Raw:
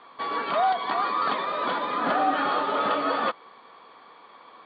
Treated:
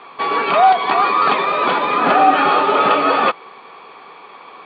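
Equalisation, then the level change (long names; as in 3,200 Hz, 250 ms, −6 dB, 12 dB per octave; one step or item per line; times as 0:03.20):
thirty-one-band graphic EQ 160 Hz +6 dB, 400 Hz +8 dB, 800 Hz +5 dB, 1,250 Hz +3 dB, 2,500 Hz +11 dB
+7.5 dB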